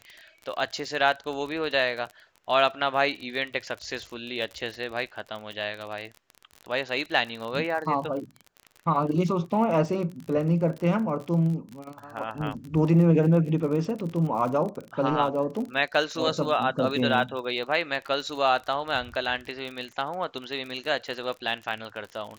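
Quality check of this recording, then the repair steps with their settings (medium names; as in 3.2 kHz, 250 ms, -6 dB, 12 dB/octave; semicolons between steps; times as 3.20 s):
crackle 40 per s -33 dBFS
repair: de-click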